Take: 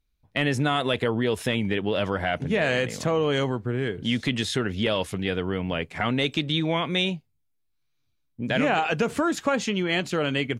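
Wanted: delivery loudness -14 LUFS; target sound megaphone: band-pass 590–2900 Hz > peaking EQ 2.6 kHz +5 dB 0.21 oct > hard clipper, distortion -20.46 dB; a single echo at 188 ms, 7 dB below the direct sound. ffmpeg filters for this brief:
-af "highpass=590,lowpass=2900,equalizer=f=2600:t=o:w=0.21:g=5,aecho=1:1:188:0.447,asoftclip=type=hard:threshold=0.126,volume=5.31"

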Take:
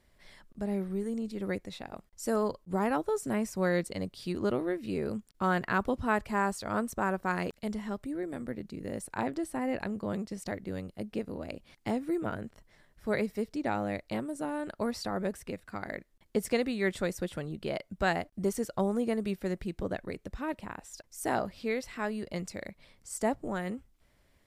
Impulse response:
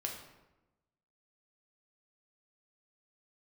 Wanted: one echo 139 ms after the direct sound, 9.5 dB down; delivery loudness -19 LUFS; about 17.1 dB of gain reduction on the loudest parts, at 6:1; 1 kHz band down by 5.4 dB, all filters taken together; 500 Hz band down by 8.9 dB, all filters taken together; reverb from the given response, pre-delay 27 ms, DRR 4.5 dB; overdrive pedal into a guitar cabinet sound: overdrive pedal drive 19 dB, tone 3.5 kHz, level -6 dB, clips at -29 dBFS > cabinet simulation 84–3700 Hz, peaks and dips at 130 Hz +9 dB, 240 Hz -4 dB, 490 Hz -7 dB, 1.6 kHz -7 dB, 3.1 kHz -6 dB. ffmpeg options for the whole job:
-filter_complex "[0:a]equalizer=f=500:t=o:g=-7.5,equalizer=f=1000:t=o:g=-3,acompressor=threshold=0.00501:ratio=6,aecho=1:1:139:0.335,asplit=2[s0][s1];[1:a]atrim=start_sample=2205,adelay=27[s2];[s1][s2]afir=irnorm=-1:irlink=0,volume=0.562[s3];[s0][s3]amix=inputs=2:normalize=0,asplit=2[s4][s5];[s5]highpass=f=720:p=1,volume=8.91,asoftclip=type=tanh:threshold=0.0355[s6];[s4][s6]amix=inputs=2:normalize=0,lowpass=f=3500:p=1,volume=0.501,highpass=84,equalizer=f=130:t=q:w=4:g=9,equalizer=f=240:t=q:w=4:g=-4,equalizer=f=490:t=q:w=4:g=-7,equalizer=f=1600:t=q:w=4:g=-7,equalizer=f=3100:t=q:w=4:g=-6,lowpass=f=3700:w=0.5412,lowpass=f=3700:w=1.3066,volume=20"

